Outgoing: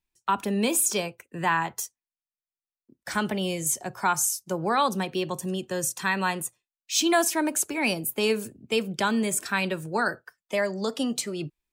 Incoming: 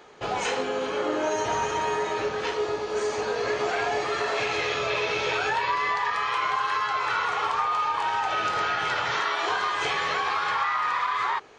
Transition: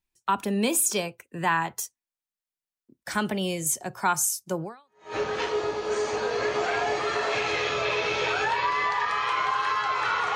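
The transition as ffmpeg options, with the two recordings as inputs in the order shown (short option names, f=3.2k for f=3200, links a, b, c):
-filter_complex "[0:a]apad=whole_dur=10.35,atrim=end=10.35,atrim=end=5.16,asetpts=PTS-STARTPTS[a];[1:a]atrim=start=1.67:end=7.4,asetpts=PTS-STARTPTS[b];[a][b]acrossfade=d=0.54:c1=exp:c2=exp"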